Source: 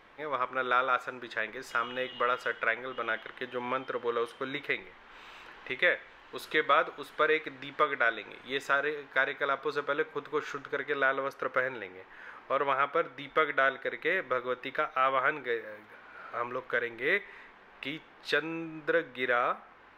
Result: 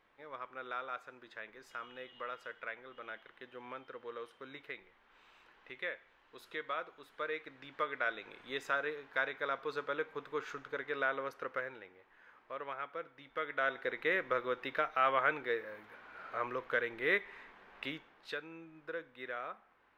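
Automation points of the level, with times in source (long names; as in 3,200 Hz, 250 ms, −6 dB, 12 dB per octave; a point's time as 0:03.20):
0:07.01 −14 dB
0:08.26 −6.5 dB
0:11.32 −6.5 dB
0:11.99 −14 dB
0:13.28 −14 dB
0:13.85 −3 dB
0:17.84 −3 dB
0:18.42 −14 dB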